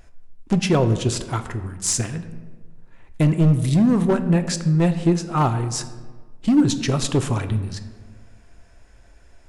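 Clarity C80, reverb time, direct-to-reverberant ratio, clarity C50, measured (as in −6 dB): 13.0 dB, 1.5 s, 9.0 dB, 12.0 dB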